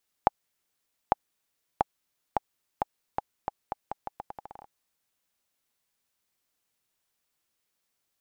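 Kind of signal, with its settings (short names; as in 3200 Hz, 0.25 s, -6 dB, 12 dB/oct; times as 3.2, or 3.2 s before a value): bouncing ball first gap 0.85 s, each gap 0.81, 820 Hz, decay 21 ms -5 dBFS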